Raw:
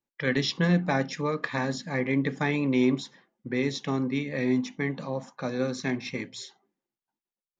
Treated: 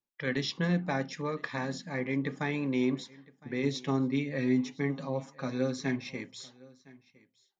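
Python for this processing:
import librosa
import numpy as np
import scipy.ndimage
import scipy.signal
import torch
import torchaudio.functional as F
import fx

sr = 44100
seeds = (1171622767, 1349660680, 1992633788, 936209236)

y = fx.comb(x, sr, ms=7.3, depth=0.75, at=(3.63, 6.04))
y = y + 10.0 ** (-23.0 / 20.0) * np.pad(y, (int(1011 * sr / 1000.0), 0))[:len(y)]
y = y * librosa.db_to_amplitude(-5.5)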